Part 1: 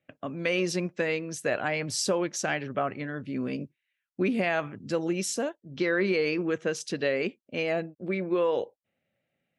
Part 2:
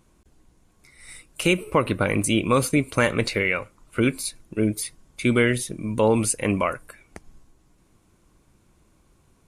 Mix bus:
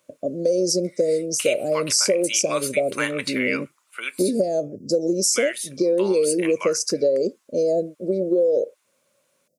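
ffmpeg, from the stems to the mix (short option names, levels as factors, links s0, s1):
-filter_complex "[0:a]firequalizer=gain_entry='entry(100,0);entry(580,13);entry(960,-29);entry(2900,-27);entry(4900,12)':delay=0.05:min_phase=1,volume=1.33[s0];[1:a]highpass=1400,volume=1.06,asplit=3[s1][s2][s3];[s1]atrim=end=4.48,asetpts=PTS-STARTPTS,afade=t=out:st=4.476:d=0.004:c=hsin[s4];[s2]atrim=start=4.48:end=5.34,asetpts=PTS-STARTPTS,volume=0[s5];[s3]atrim=start=5.34,asetpts=PTS-STARTPTS,afade=t=in:d=0.004:c=hsin[s6];[s4][s5][s6]concat=n=3:v=0:a=1[s7];[s0][s7]amix=inputs=2:normalize=0,lowshelf=f=130:g=-5.5,acompressor=threshold=0.158:ratio=6"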